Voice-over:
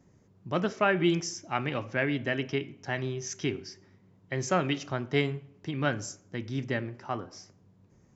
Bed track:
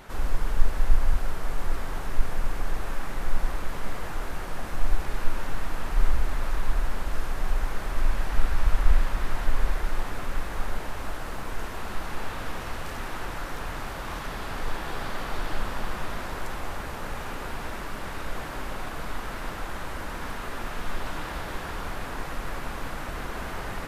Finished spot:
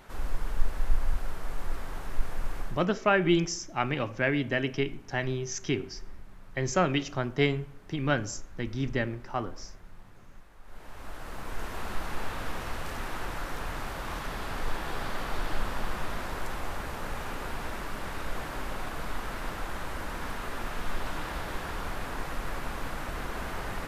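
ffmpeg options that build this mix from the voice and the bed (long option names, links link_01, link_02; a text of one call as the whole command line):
ffmpeg -i stem1.wav -i stem2.wav -filter_complex "[0:a]adelay=2250,volume=1.5dB[link_01];[1:a]volume=16dB,afade=type=out:start_time=2.6:duration=0.25:silence=0.133352,afade=type=in:start_time=10.63:duration=1.17:silence=0.0841395[link_02];[link_01][link_02]amix=inputs=2:normalize=0" out.wav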